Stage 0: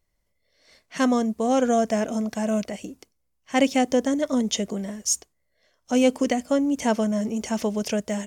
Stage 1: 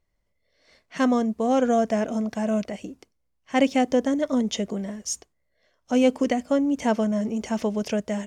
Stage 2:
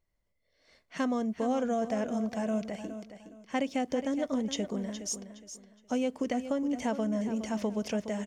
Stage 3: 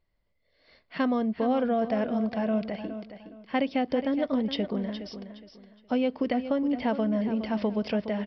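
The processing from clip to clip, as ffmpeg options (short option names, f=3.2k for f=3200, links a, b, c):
-af "lowpass=f=3.5k:p=1"
-af "acompressor=threshold=-22dB:ratio=5,aecho=1:1:416|832|1248:0.282|0.0789|0.0221,volume=-5dB"
-af "aresample=11025,aresample=44100,volume=4dB"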